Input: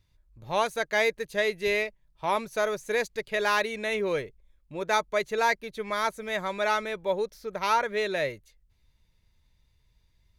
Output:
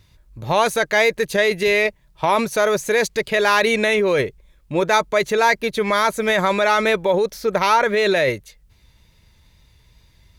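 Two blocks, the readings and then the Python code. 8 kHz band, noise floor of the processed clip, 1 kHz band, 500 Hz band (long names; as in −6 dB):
+11.0 dB, −56 dBFS, +9.0 dB, +10.0 dB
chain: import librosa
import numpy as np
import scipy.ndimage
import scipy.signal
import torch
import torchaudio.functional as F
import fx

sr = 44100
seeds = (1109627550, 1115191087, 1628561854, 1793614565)

p1 = fx.highpass(x, sr, hz=55.0, slope=6)
p2 = fx.over_compress(p1, sr, threshold_db=-32.0, ratio=-0.5)
p3 = p1 + (p2 * librosa.db_to_amplitude(-1.0))
p4 = fx.wow_flutter(p3, sr, seeds[0], rate_hz=2.1, depth_cents=20.0)
y = p4 * librosa.db_to_amplitude(7.5)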